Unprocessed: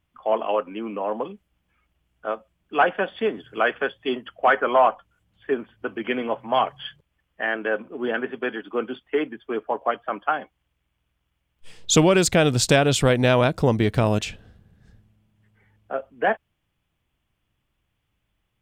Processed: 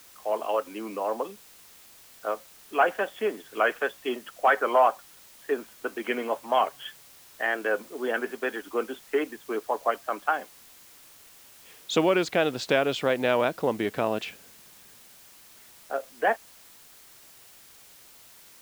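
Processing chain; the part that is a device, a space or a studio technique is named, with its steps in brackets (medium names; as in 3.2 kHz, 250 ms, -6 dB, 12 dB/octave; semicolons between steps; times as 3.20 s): dictaphone (band-pass 300–3400 Hz; level rider gain up to 5 dB; wow and flutter; white noise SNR 23 dB); trim -6.5 dB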